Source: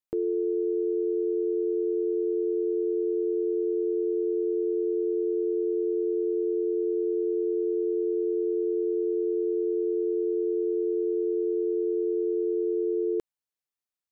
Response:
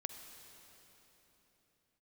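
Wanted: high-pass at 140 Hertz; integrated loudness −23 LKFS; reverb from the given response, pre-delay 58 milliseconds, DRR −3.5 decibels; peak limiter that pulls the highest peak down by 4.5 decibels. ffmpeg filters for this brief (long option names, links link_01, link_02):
-filter_complex "[0:a]highpass=140,alimiter=level_in=1dB:limit=-24dB:level=0:latency=1,volume=-1dB,asplit=2[link_01][link_02];[1:a]atrim=start_sample=2205,adelay=58[link_03];[link_02][link_03]afir=irnorm=-1:irlink=0,volume=5dB[link_04];[link_01][link_04]amix=inputs=2:normalize=0,volume=10.5dB"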